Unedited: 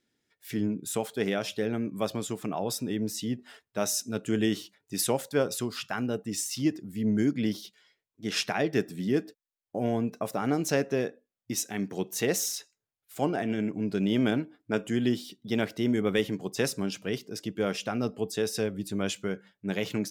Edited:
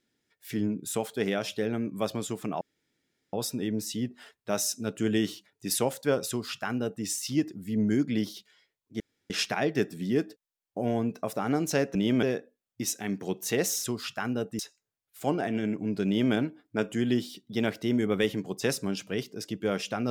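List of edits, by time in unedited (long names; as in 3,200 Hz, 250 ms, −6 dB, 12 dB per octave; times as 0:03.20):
0:02.61: splice in room tone 0.72 s
0:05.57–0:06.32: duplicate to 0:12.54
0:08.28: splice in room tone 0.30 s
0:14.01–0:14.29: duplicate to 0:10.93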